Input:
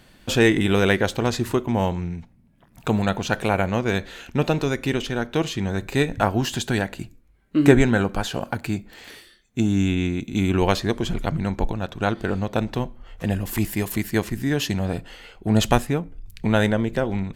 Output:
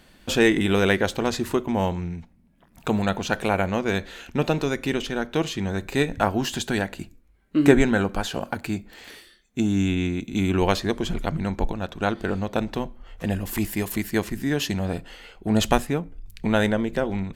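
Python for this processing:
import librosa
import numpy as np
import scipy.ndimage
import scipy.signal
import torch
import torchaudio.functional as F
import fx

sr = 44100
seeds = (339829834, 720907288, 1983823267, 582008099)

y = fx.peak_eq(x, sr, hz=120.0, db=-13.0, octaves=0.22)
y = y * 10.0 ** (-1.0 / 20.0)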